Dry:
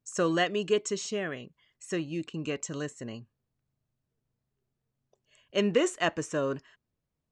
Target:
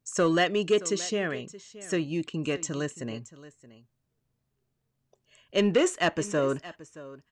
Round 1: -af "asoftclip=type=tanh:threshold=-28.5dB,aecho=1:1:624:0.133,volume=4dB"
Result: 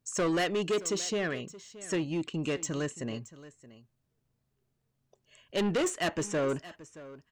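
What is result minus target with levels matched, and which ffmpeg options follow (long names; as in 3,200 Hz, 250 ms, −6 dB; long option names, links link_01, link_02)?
soft clipping: distortion +11 dB
-af "asoftclip=type=tanh:threshold=-17.5dB,aecho=1:1:624:0.133,volume=4dB"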